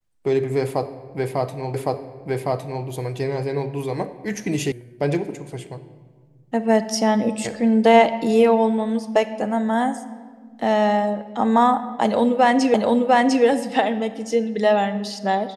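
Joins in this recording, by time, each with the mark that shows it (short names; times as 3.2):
1.74 repeat of the last 1.11 s
4.72 sound cut off
12.74 repeat of the last 0.7 s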